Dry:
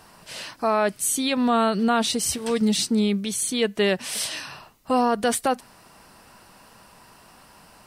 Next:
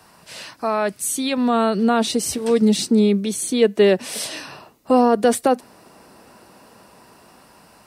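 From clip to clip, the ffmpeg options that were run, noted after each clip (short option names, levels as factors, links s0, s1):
-filter_complex "[0:a]highpass=52,bandreject=f=3100:w=25,acrossover=split=250|560|1900[s0][s1][s2][s3];[s1]dynaudnorm=f=710:g=5:m=3.55[s4];[s0][s4][s2][s3]amix=inputs=4:normalize=0"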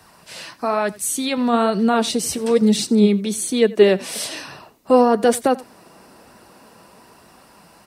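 -af "flanger=delay=0.5:depth=5.6:regen=69:speed=1.1:shape=sinusoidal,aecho=1:1:88:0.0891,volume=1.78"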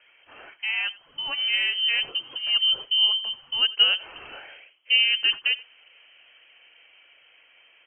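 -af "lowpass=f=2800:t=q:w=0.5098,lowpass=f=2800:t=q:w=0.6013,lowpass=f=2800:t=q:w=0.9,lowpass=f=2800:t=q:w=2.563,afreqshift=-3300,volume=0.447"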